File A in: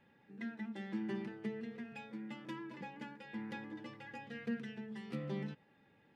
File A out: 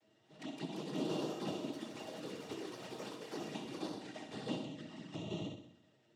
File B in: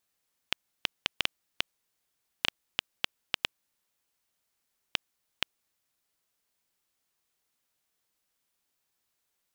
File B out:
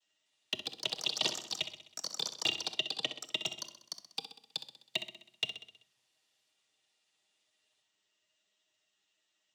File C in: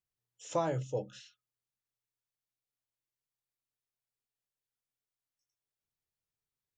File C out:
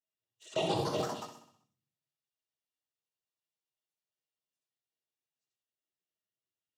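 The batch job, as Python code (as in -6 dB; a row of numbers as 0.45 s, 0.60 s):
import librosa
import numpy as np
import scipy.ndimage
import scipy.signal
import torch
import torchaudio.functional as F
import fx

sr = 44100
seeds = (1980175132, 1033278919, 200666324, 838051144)

y = fx.halfwave_hold(x, sr)
y = fx.peak_eq(y, sr, hz=3600.0, db=11.5, octaves=0.26)
y = fx.noise_vocoder(y, sr, seeds[0], bands=12)
y = fx.env_flanger(y, sr, rest_ms=10.8, full_db=-36.0)
y = fx.small_body(y, sr, hz=(370.0, 630.0, 1900.0, 2800.0), ring_ms=45, db=10)
y = fx.echo_pitch(y, sr, ms=249, semitones=4, count=3, db_per_echo=-3.0)
y = fx.echo_feedback(y, sr, ms=64, feedback_pct=56, wet_db=-10.5)
y = fx.room_shoebox(y, sr, seeds[1], volume_m3=890.0, walls='furnished', distance_m=0.55)
y = y * 10.0 ** (-7.5 / 20.0)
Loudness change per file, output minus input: +1.0 LU, -0.5 LU, +1.0 LU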